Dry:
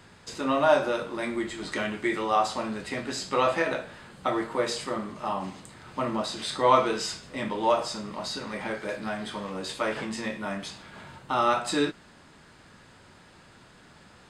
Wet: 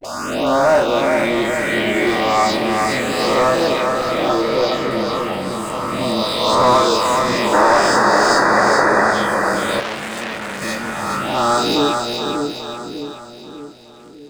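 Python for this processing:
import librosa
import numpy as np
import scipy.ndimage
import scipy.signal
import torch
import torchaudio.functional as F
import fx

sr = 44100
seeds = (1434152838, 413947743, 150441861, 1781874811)

y = fx.spec_swells(x, sr, rise_s=1.73)
y = fx.dispersion(y, sr, late='highs', ms=47.0, hz=410.0)
y = fx.leveller(y, sr, passes=3)
y = fx.moving_average(y, sr, points=5, at=(4.41, 4.91))
y = fx.spec_paint(y, sr, seeds[0], shape='noise', start_s=7.52, length_s=1.59, low_hz=280.0, high_hz=2000.0, level_db=-13.0)
y = fx.env_phaser(y, sr, low_hz=180.0, high_hz=3100.0, full_db=-8.5)
y = fx.low_shelf(y, sr, hz=370.0, db=-3.0)
y = fx.echo_split(y, sr, split_hz=490.0, low_ms=599, high_ms=418, feedback_pct=52, wet_db=-4.0)
y = fx.transformer_sat(y, sr, knee_hz=2800.0, at=(9.8, 10.62))
y = F.gain(torch.from_numpy(y), -1.0).numpy()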